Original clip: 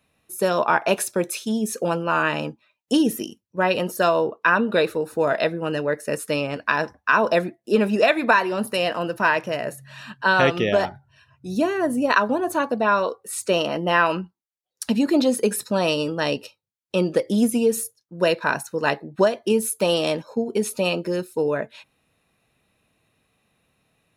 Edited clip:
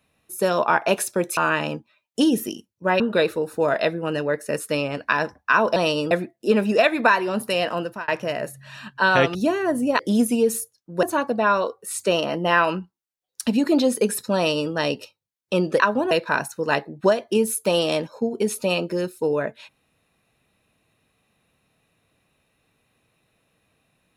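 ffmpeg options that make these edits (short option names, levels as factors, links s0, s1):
-filter_complex "[0:a]asplit=11[s0][s1][s2][s3][s4][s5][s6][s7][s8][s9][s10];[s0]atrim=end=1.372[s11];[s1]atrim=start=2.098:end=3.732[s12];[s2]atrim=start=4.588:end=7.352[s13];[s3]atrim=start=15.778:end=16.132[s14];[s4]atrim=start=7.348:end=9.32,asetpts=PTS-STARTPTS,afade=t=out:st=1.682:d=0.29[s15];[s5]atrim=start=9.32:end=10.592,asetpts=PTS-STARTPTS,afade=t=in:d=0.004:c=hsin[s16];[s6]atrim=start=11.498:end=12.142[s17];[s7]atrim=start=17.218:end=18.262[s18];[s8]atrim=start=12.448:end=17.222[s19];[s9]atrim=start=12.138:end=12.452[s20];[s10]atrim=start=18.258[s21];[s11][s12]acrossfade=d=0.004:c1=hsin:c2=hsin[s22];[s22][s13]acrossfade=d=0.004:c1=hsin:c2=hsin[s23];[s23][s14]acrossfade=d=0.004:c1=hsin:c2=hsin[s24];[s15][s16]concat=n=2:v=0:a=1[s25];[s24][s25]acrossfade=d=0.004:c1=hsin:c2=hsin[s26];[s26][s17]acrossfade=d=0.004:c1=hsin:c2=hsin[s27];[s27][s18]acrossfade=d=0.004:c1=hsin:c2=hsin[s28];[s28][s19]acrossfade=d=0.004:c1=hsin:c2=hsin[s29];[s29][s20]acrossfade=d=0.004:c1=hsin:c2=hsin[s30];[s30][s21]acrossfade=d=0.004:c1=hsin:c2=hsin"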